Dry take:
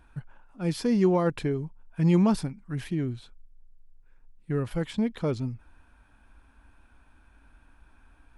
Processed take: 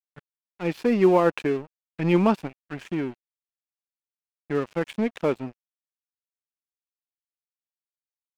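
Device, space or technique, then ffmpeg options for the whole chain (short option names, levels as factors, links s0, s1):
pocket radio on a weak battery: -af "highpass=290,lowpass=3100,aeval=exprs='sgn(val(0))*max(abs(val(0))-0.00562,0)':c=same,equalizer=f=2600:t=o:w=0.36:g=6,volume=2.37"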